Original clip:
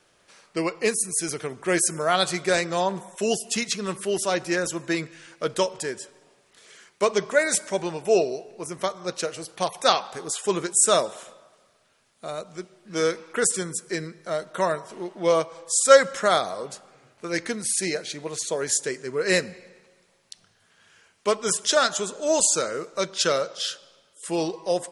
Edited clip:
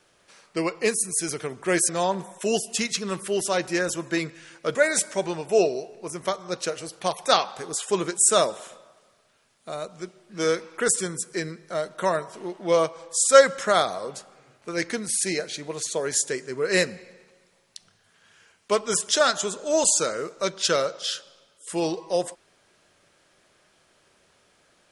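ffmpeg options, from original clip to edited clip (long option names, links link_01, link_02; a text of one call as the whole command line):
ffmpeg -i in.wav -filter_complex "[0:a]asplit=3[link_01][link_02][link_03];[link_01]atrim=end=1.892[link_04];[link_02]atrim=start=2.658:end=5.522[link_05];[link_03]atrim=start=7.308[link_06];[link_04][link_05]acrossfade=duration=0.004:curve1=hsin:curve2=hsin[link_07];[link_07][link_06]acrossfade=duration=0.004:curve1=hsin:curve2=hsin" out.wav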